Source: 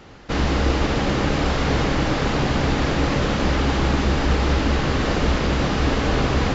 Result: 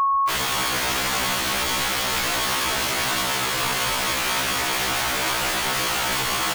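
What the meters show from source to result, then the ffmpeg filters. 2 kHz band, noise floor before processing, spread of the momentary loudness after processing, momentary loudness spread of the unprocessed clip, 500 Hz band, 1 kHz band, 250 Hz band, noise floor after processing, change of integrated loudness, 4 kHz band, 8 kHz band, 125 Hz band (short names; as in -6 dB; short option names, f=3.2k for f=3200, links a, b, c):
+3.0 dB, -23 dBFS, 0 LU, 1 LU, -7.5 dB, +2.0 dB, -13.0 dB, -24 dBFS, -0.5 dB, +6.0 dB, n/a, -15.5 dB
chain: -filter_complex "[0:a]aemphasis=mode=production:type=50fm,afftfilt=real='re*gte(hypot(re,im),0.0631)':imag='im*gte(hypot(re,im),0.0631)':win_size=1024:overlap=0.75,lowshelf=f=200:t=q:w=3:g=12.5,dynaudnorm=f=360:g=7:m=3dB,aeval=exprs='val(0)*sin(2*PI*49*n/s)':c=same,aresample=8000,asoftclip=type=hard:threshold=-13.5dB,aresample=44100,aeval=exprs='val(0)+0.0501*sin(2*PI*1100*n/s)':c=same,aeval=exprs='(mod(15*val(0)+1,2)-1)/15':c=same,asplit=2[a][b];[b]adelay=65,lowpass=f=1.6k:p=1,volume=-17.5dB,asplit=2[c][d];[d]adelay=65,lowpass=f=1.6k:p=1,volume=0.3,asplit=2[e][f];[f]adelay=65,lowpass=f=1.6k:p=1,volume=0.3[g];[a][c][e][g]amix=inputs=4:normalize=0,afftfilt=real='re*1.73*eq(mod(b,3),0)':imag='im*1.73*eq(mod(b,3),0)':win_size=2048:overlap=0.75,volume=7dB"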